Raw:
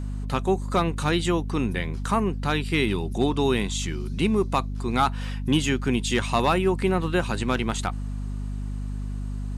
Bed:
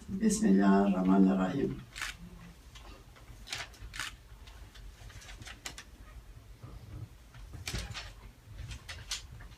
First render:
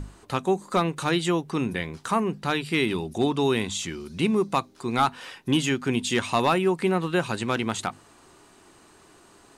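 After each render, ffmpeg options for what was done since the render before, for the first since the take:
-af "bandreject=f=50:t=h:w=6,bandreject=f=100:t=h:w=6,bandreject=f=150:t=h:w=6,bandreject=f=200:t=h:w=6,bandreject=f=250:t=h:w=6"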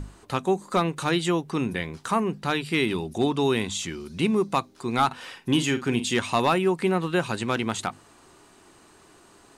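-filter_complex "[0:a]asettb=1/sr,asplit=3[s0][s1][s2];[s0]atrim=end=5.064[s3];[s1]atrim=start=5.06:end=6.1,asetpts=PTS-STARTPTS,afade=t=in:d=0.004:c=qsin,afade=t=out:st=1.036:d=0.004:c=qsin,asplit=2[s4][s5];[s5]adelay=49,volume=0.266[s6];[s4][s6]amix=inputs=2:normalize=0,atrim=end_sample=45864[s7];[s2]atrim=start=6.096[s8];[s3][s7]acrossfade=d=0.004:c1=hsin:c2=qsin[s9];[s9][s8]acrossfade=d=0.004:c1=qsin:c2=hsin"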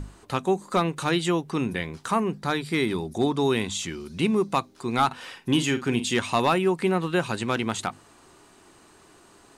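-filter_complex "[0:a]asettb=1/sr,asplit=3[s0][s1][s2];[s0]atrim=end=2.374[s3];[s1]atrim=start=2.37:end=3.51,asetpts=PTS-STARTPTS,afade=t=in:d=0.004:c=qsin,afade=t=out:st=1.136:d=0.004:c=qsin,equalizer=f=2800:t=o:w=0.25:g=-11.5[s4];[s2]atrim=start=3.506[s5];[s3][s4]acrossfade=d=0.004:c1=hsin:c2=qsin[s6];[s6][s5]acrossfade=d=0.004:c1=qsin:c2=hsin"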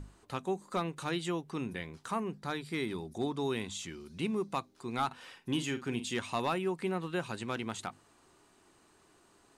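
-af "volume=0.299"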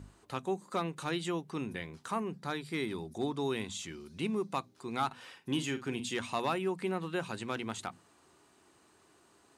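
-af "highpass=58,bandreject=f=60:t=h:w=6,bandreject=f=120:t=h:w=6,bandreject=f=180:t=h:w=6,bandreject=f=240:t=h:w=6"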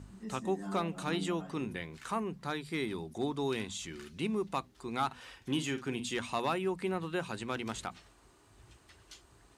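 -filter_complex "[1:a]volume=0.168[s0];[0:a][s0]amix=inputs=2:normalize=0"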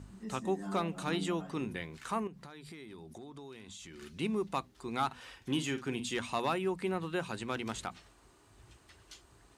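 -filter_complex "[0:a]asettb=1/sr,asplit=3[s0][s1][s2];[s0]atrim=end=2.274[s3];[s1]atrim=start=2.27:end=4.02,asetpts=PTS-STARTPTS,afade=t=in:d=0.004:c=qsin,afade=t=out:st=1.746:d=0.004:c=qsin,acompressor=threshold=0.00562:ratio=8:attack=3.2:release=140:knee=1:detection=peak[s4];[s2]atrim=start=4.016[s5];[s3][s4]acrossfade=d=0.004:c1=hsin:c2=qsin[s6];[s6][s5]acrossfade=d=0.004:c1=qsin:c2=hsin"

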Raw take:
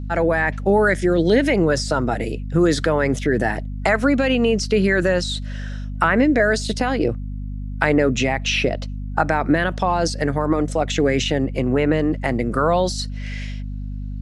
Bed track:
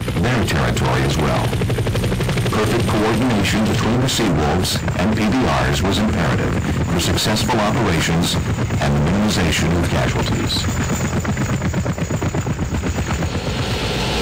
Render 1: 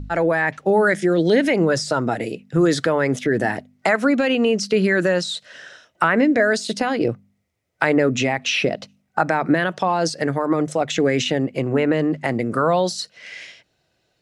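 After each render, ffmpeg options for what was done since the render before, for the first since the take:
-af "bandreject=f=50:t=h:w=4,bandreject=f=100:t=h:w=4,bandreject=f=150:t=h:w=4,bandreject=f=200:t=h:w=4,bandreject=f=250:t=h:w=4"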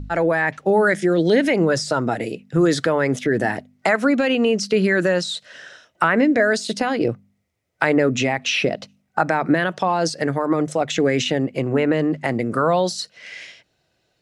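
-af anull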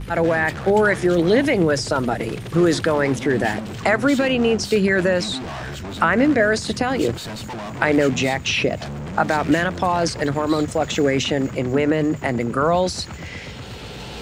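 -filter_complex "[1:a]volume=0.2[s0];[0:a][s0]amix=inputs=2:normalize=0"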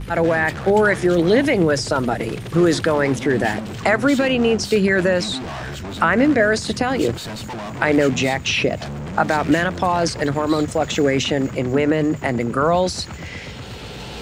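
-af "volume=1.12,alimiter=limit=0.794:level=0:latency=1"

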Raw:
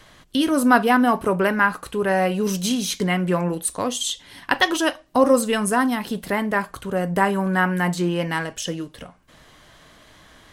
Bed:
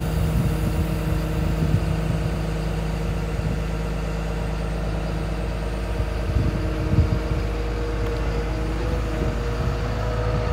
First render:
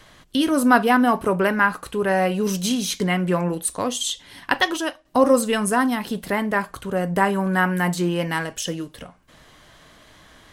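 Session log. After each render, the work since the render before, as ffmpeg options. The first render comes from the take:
-filter_complex "[0:a]asettb=1/sr,asplit=3[s0][s1][s2];[s0]atrim=end=7.514[s3];[s1]atrim=start=7.51:end=8.99,asetpts=PTS-STARTPTS,afade=t=in:d=0.004:c=qsin,afade=t=out:st=1.476:d=0.004:c=qsin,highshelf=f=11000:g=7.5[s4];[s2]atrim=start=8.986[s5];[s3][s4]acrossfade=d=0.004:c1=hsin:c2=qsin[s6];[s6][s5]acrossfade=d=0.004:c1=qsin:c2=hsin,asplit=2[s7][s8];[s7]atrim=end=5.05,asetpts=PTS-STARTPTS,afade=t=out:st=4.5:d=0.55:silence=0.334965[s9];[s8]atrim=start=5.05,asetpts=PTS-STARTPTS,afade=t=in:d=0.004:c=hsin:silence=0.334965[s10];[s9][s10]concat=n=2:v=0:a=1"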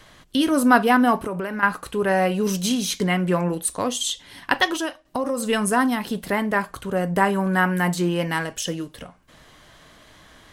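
-filter_complex "[0:a]asettb=1/sr,asplit=3[s0][s1][s2];[s0]atrim=end=1.234[s3];[s1]atrim=start=1.23:end=1.63,asetpts=PTS-STARTPTS,afade=t=in:d=0.004:c=qsin,afade=t=out:st=0.396:d=0.004:c=qsin,acompressor=threshold=0.0631:ratio=6:attack=3.2:release=140:knee=1:detection=peak[s4];[s2]atrim=start=1.626[s5];[s3][s4]acrossfade=d=0.004:c1=hsin:c2=qsin[s6];[s6][s5]acrossfade=d=0.004:c1=qsin:c2=hsin,asettb=1/sr,asplit=3[s7][s8][s9];[s7]atrim=end=4.854[s10];[s8]atrim=start=4.85:end=5.48,asetpts=PTS-STARTPTS,afade=t=in:d=0.004:c=qsin,afade=t=out:st=0.626:d=0.004:c=qsin,acompressor=threshold=0.0891:ratio=5:attack=3.2:release=140:knee=1:detection=peak[s11];[s9]atrim=start=5.476[s12];[s10][s11]acrossfade=d=0.004:c1=hsin:c2=qsin[s13];[s13][s12]acrossfade=d=0.004:c1=qsin:c2=hsin"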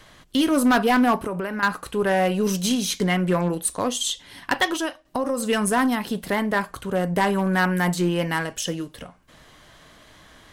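-af "aeval=exprs='0.794*(cos(1*acos(clip(val(0)/0.794,-1,1)))-cos(1*PI/2))+0.0355*(cos(5*acos(clip(val(0)/0.794,-1,1)))-cos(5*PI/2))+0.0282*(cos(7*acos(clip(val(0)/0.794,-1,1)))-cos(7*PI/2))+0.00891*(cos(8*acos(clip(val(0)/0.794,-1,1)))-cos(8*PI/2))':c=same,asoftclip=type=hard:threshold=0.224"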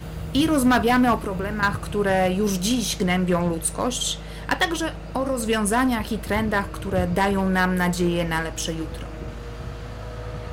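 -filter_complex "[1:a]volume=0.316[s0];[0:a][s0]amix=inputs=2:normalize=0"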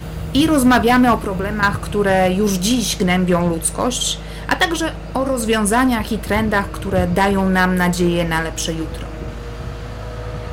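-af "volume=1.88"

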